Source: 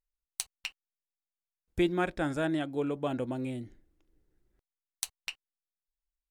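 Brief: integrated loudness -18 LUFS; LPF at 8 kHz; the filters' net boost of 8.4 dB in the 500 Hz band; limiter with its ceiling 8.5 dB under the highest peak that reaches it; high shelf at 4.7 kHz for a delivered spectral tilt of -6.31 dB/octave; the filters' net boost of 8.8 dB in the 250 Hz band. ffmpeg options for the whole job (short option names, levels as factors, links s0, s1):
-af "lowpass=8000,equalizer=f=250:t=o:g=8.5,equalizer=f=500:t=o:g=8,highshelf=f=4700:g=-4.5,volume=2.82,alimiter=limit=0.355:level=0:latency=1"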